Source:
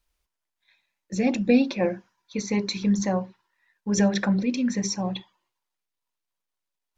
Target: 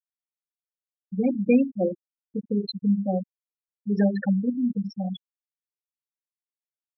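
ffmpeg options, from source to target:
-af "afftfilt=real='re*gte(hypot(re,im),0.2)':imag='im*gte(hypot(re,im),0.2)':win_size=1024:overlap=0.75,aresample=11025,aresample=44100"

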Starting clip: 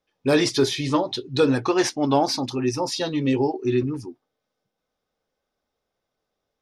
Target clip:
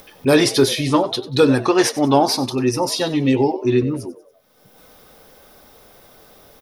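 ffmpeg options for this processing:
-filter_complex "[0:a]aexciter=amount=4.3:drive=2.4:freq=9400,asplit=4[s0][s1][s2][s3];[s1]adelay=94,afreqshift=100,volume=0.141[s4];[s2]adelay=188,afreqshift=200,volume=0.0468[s5];[s3]adelay=282,afreqshift=300,volume=0.0153[s6];[s0][s4][s5][s6]amix=inputs=4:normalize=0,acompressor=mode=upward:threshold=0.0282:ratio=2.5,volume=1.78"

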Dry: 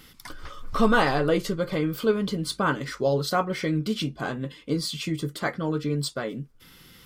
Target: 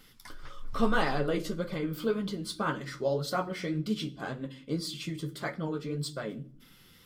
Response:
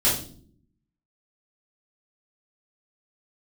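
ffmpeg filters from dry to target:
-filter_complex "[0:a]flanger=delay=3.5:depth=9.6:regen=38:speed=1.8:shape=triangular,asplit=2[s0][s1];[1:a]atrim=start_sample=2205[s2];[s1][s2]afir=irnorm=-1:irlink=0,volume=0.0473[s3];[s0][s3]amix=inputs=2:normalize=0,volume=0.668"

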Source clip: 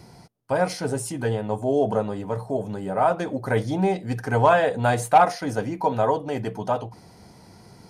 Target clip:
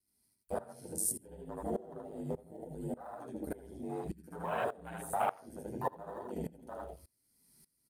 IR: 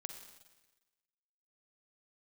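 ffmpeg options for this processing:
-filter_complex "[0:a]aeval=exprs='val(0)*sin(2*PI*50*n/s)':c=same,flanger=delay=2.8:depth=7.6:regen=-51:speed=0.29:shape=sinusoidal,acrossover=split=480|1200[s0][s1][s2];[s1]aeval=exprs='sgn(val(0))*max(abs(val(0))-0.00794,0)':c=same[s3];[s0][s3][s2]amix=inputs=3:normalize=0,bandreject=f=92.9:t=h:w=4,bandreject=f=185.8:t=h:w=4,bandreject=f=278.7:t=h:w=4,bandreject=f=371.6:t=h:w=4,bandreject=f=464.5:t=h:w=4,bandreject=f=557.4:t=h:w=4,bandreject=f=650.3:t=h:w=4,bandreject=f=743.2:t=h:w=4,bandreject=f=836.1:t=h:w=4,bandreject=f=929:t=h:w=4,bandreject=f=1021.9:t=h:w=4,bandreject=f=1114.8:t=h:w=4,bandreject=f=1207.7:t=h:w=4,bandreject=f=1300.6:t=h:w=4,bandreject=f=1393.5:t=h:w=4,bandreject=f=1486.4:t=h:w=4,bandreject=f=1579.3:t=h:w=4,bandreject=f=1672.2:t=h:w=4,bandreject=f=1765.1:t=h:w=4,bandreject=f=1858:t=h:w=4,bandreject=f=1950.9:t=h:w=4,bandreject=f=2043.8:t=h:w=4,bandreject=f=2136.7:t=h:w=4,bandreject=f=2229.6:t=h:w=4,bandreject=f=2322.5:t=h:w=4,bandreject=f=2415.4:t=h:w=4,bandreject=f=2508.3:t=h:w=4,bandreject=f=2601.2:t=h:w=4,bandreject=f=2694.1:t=h:w=4,bandreject=f=2787:t=h:w=4,bandreject=f=2879.9:t=h:w=4,bandreject=f=2972.8:t=h:w=4,bandreject=f=3065.7:t=h:w=4,bandreject=f=3158.6:t=h:w=4,bandreject=f=3251.5:t=h:w=4,bandreject=f=3344.4:t=h:w=4,bandreject=f=3437.3:t=h:w=4,aexciter=amount=5.1:drive=6.3:freq=8500,aecho=1:1:75.8|160.3:0.891|0.355,afwtdn=0.0282,lowshelf=f=64:g=-7.5,flanger=delay=2.6:depth=9.9:regen=-49:speed=0.64:shape=triangular,highshelf=f=3700:g=11,acompressor=threshold=0.0112:ratio=2,aeval=exprs='val(0)*pow(10,-21*if(lt(mod(-1.7*n/s,1),2*abs(-1.7)/1000),1-mod(-1.7*n/s,1)/(2*abs(-1.7)/1000),(mod(-1.7*n/s,1)-2*abs(-1.7)/1000)/(1-2*abs(-1.7)/1000))/20)':c=same,volume=1.88"

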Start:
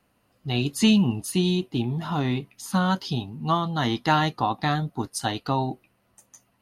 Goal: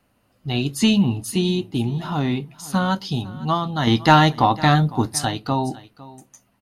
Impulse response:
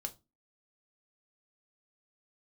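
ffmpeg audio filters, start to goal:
-filter_complex "[0:a]asettb=1/sr,asplit=3[s0][s1][s2];[s0]atrim=end=3.874[s3];[s1]atrim=start=3.87:end=5.25,asetpts=PTS-STARTPTS,afade=t=in:d=0.004:c=qsin,afade=t=out:st=1.376:d=0.004:c=qsin,acontrast=44[s4];[s2]atrim=start=5.246[s5];[s3][s4]acrossfade=d=0.004:c1=hsin:c2=qsin[s6];[s6][s5]acrossfade=d=0.004:c1=qsin:c2=hsin,aecho=1:1:505:0.106,asplit=2[s7][s8];[1:a]atrim=start_sample=2205,lowshelf=f=370:g=7.5[s9];[s8][s9]afir=irnorm=-1:irlink=0,volume=0.355[s10];[s7][s10]amix=inputs=2:normalize=0"

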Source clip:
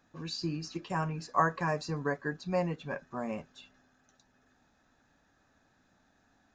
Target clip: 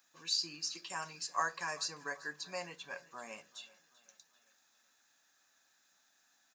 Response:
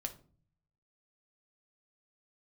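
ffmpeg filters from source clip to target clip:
-filter_complex "[0:a]aderivative,aecho=1:1:387|774|1161|1548:0.0891|0.0437|0.0214|0.0105,asplit=2[s0][s1];[1:a]atrim=start_sample=2205[s2];[s1][s2]afir=irnorm=-1:irlink=0,volume=0.531[s3];[s0][s3]amix=inputs=2:normalize=0,volume=2.11"

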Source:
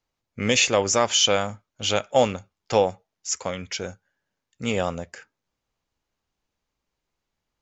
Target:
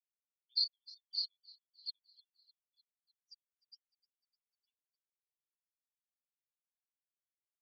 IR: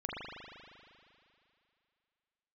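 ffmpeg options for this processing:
-filter_complex "[0:a]afftfilt=real='re*gte(hypot(re,im),0.0891)':imag='im*gte(hypot(re,im),0.0891)':win_size=1024:overlap=0.75,asuperpass=centerf=4400:order=8:qfactor=6.7,asplit=2[s0][s1];[s1]asplit=4[s2][s3][s4][s5];[s2]adelay=303,afreqshift=-34,volume=0.0708[s6];[s3]adelay=606,afreqshift=-68,volume=0.0417[s7];[s4]adelay=909,afreqshift=-102,volume=0.0245[s8];[s5]adelay=1212,afreqshift=-136,volume=0.0146[s9];[s6][s7][s8][s9]amix=inputs=4:normalize=0[s10];[s0][s10]amix=inputs=2:normalize=0,volume=1.12"

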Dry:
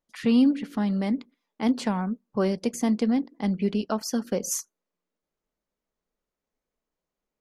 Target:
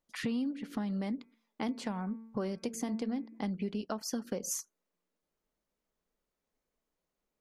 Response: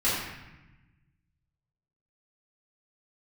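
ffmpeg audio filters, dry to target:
-filter_complex "[0:a]asettb=1/sr,asplit=3[s0][s1][s2];[s0]atrim=end=1.184[s3];[s1]atrim=start=1.18:end=3.5,asetpts=PTS-STARTPTS,afade=t=in:d=0.004:c=qsin,afade=t=out:st=2.316:d=0.004:c=qsin,bandreject=f=225.2:t=h:w=4,bandreject=f=450.4:t=h:w=4,bandreject=f=675.6:t=h:w=4,bandreject=f=900.8:t=h:w=4,bandreject=f=1126:t=h:w=4,bandreject=f=1351.2:t=h:w=4,bandreject=f=1576.4:t=h:w=4,bandreject=f=1801.6:t=h:w=4,bandreject=f=2026.8:t=h:w=4,bandreject=f=2252:t=h:w=4,bandreject=f=2477.2:t=h:w=4[s4];[s2]atrim=start=3.496[s5];[s3][s4]acrossfade=d=0.004:c1=hsin:c2=qsin[s6];[s6][s5]acrossfade=d=0.004:c1=qsin:c2=hsin,acompressor=threshold=0.0224:ratio=5"

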